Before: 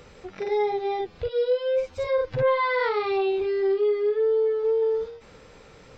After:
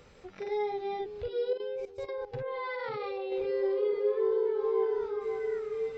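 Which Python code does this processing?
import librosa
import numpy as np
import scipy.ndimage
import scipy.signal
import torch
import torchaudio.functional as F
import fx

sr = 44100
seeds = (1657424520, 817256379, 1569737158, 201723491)

y = fx.echo_stepped(x, sr, ms=541, hz=230.0, octaves=0.7, feedback_pct=70, wet_db=-1.0)
y = fx.level_steps(y, sr, step_db=14, at=(1.53, 3.32))
y = F.gain(torch.from_numpy(y), -7.5).numpy()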